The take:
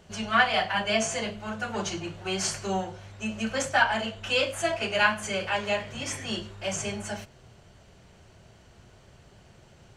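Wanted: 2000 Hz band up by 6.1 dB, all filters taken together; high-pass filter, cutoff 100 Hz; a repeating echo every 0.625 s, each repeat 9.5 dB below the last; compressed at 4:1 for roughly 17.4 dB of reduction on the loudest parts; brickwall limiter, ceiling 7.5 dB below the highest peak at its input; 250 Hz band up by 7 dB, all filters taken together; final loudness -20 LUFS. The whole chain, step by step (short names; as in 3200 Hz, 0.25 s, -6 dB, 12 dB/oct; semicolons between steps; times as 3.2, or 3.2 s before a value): HPF 100 Hz; bell 250 Hz +9 dB; bell 2000 Hz +8 dB; compressor 4:1, threshold -33 dBFS; limiter -27 dBFS; feedback echo 0.625 s, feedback 33%, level -9.5 dB; gain +16.5 dB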